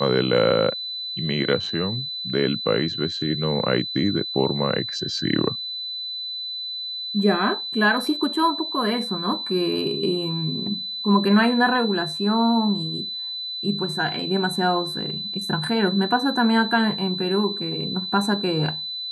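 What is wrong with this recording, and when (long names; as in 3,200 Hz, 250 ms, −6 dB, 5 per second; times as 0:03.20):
whistle 4,000 Hz −28 dBFS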